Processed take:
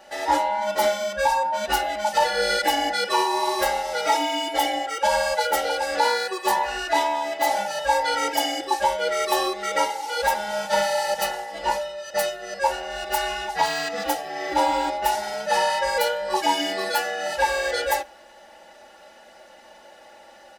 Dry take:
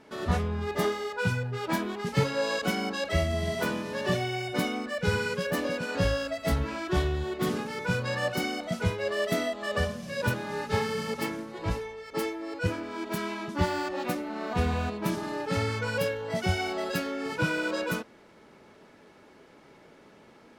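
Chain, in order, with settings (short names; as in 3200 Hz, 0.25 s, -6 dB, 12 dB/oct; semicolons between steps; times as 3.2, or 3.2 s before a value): band inversion scrambler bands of 1000 Hz; tone controls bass -11 dB, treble +5 dB; comb 3.5 ms, depth 81%; on a send at -20 dB: reverb RT60 0.55 s, pre-delay 6 ms; on the sum: maximiser +13 dB; gain -8.5 dB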